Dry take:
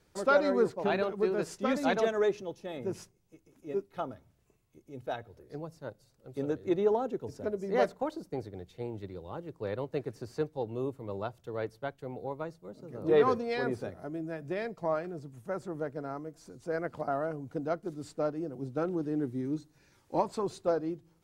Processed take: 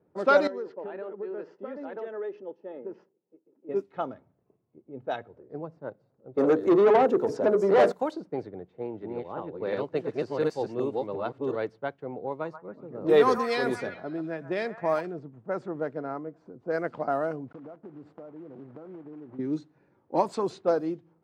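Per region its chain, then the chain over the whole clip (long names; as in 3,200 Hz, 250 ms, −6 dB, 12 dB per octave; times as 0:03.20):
0:00.47–0:03.69: downward compressor 10 to 1, threshold −31 dBFS + loudspeaker in its box 390–5,100 Hz, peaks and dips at 710 Hz −10 dB, 1,100 Hz −9 dB, 1,500 Hz −5 dB, 2,300 Hz −10 dB, 3,800 Hz −10 dB
0:06.37–0:07.92: parametric band 2,600 Hz −6.5 dB 1.3 octaves + mains-hum notches 60/120/180/240/300/360/420/480 Hz + mid-hump overdrive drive 24 dB, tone 1,200 Hz, clips at −15 dBFS
0:08.65–0:11.56: delay that plays each chunk backwards 358 ms, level 0 dB + low-shelf EQ 98 Hz −7 dB
0:12.32–0:15.01: high-shelf EQ 5,900 Hz +11.5 dB + echo through a band-pass that steps 134 ms, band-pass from 1,100 Hz, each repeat 0.7 octaves, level −6 dB
0:17.48–0:19.39: one scale factor per block 3 bits + dynamic equaliser 3,900 Hz, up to −5 dB, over −51 dBFS, Q 0.97 + downward compressor 20 to 1, threshold −43 dBFS
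whole clip: high-pass filter 170 Hz 12 dB per octave; low-pass that shuts in the quiet parts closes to 670 Hz, open at −26.5 dBFS; level +4.5 dB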